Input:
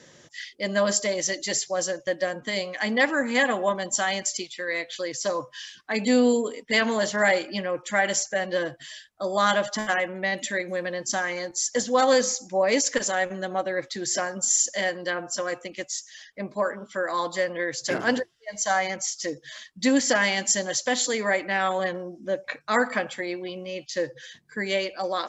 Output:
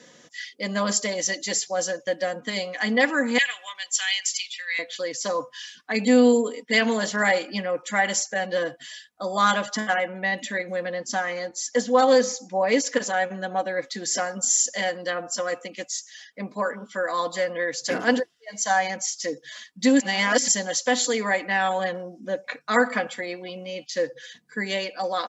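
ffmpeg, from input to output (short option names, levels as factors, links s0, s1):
-filter_complex "[0:a]asettb=1/sr,asplit=3[s0][s1][s2];[s0]atrim=end=3.384[s3];[s1]atrim=start=3.38:end=4.79,asetpts=PTS-STARTPTS,afade=t=in:d=0.004:c=qsin,afade=t=out:st=1.406:d=0.004:c=qsin,highpass=f=2500:t=q:w=2.3[s4];[s2]atrim=start=4.786[s5];[s3][s4]acrossfade=d=0.004:c1=hsin:c2=qsin[s6];[s6][s5]acrossfade=d=0.004:c1=qsin:c2=hsin,asettb=1/sr,asplit=3[s7][s8][s9];[s7]atrim=end=9.804[s10];[s8]atrim=start=9.8:end=13.56,asetpts=PTS-STARTPTS,afade=t=in:d=0.004:c=qsin,afade=t=out:st=3.756:d=0.004:c=qsin,highshelf=f=7200:g=-11.5[s11];[s9]atrim=start=13.556[s12];[s10][s11]acrossfade=d=0.004:c1=hsin:c2=qsin[s13];[s13][s12]acrossfade=d=0.004:c1=qsin:c2=hsin,asplit=3[s14][s15][s16];[s14]atrim=end=20.002[s17];[s15]atrim=start=19.998:end=20.482,asetpts=PTS-STARTPTS,areverse[s18];[s16]atrim=start=20.478[s19];[s17][s18]acrossfade=d=0.004:c1=hsin:c2=hsin[s20];[s20][s19]acrossfade=d=0.004:c1=hsin:c2=hsin,highpass=120,aecho=1:1:4.1:0.51"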